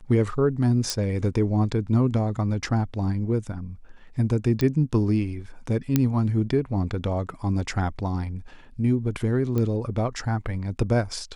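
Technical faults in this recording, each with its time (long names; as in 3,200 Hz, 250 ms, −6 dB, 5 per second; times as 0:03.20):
0:00.90: click
0:04.61: click −13 dBFS
0:05.96: click −6 dBFS
0:09.58: click −15 dBFS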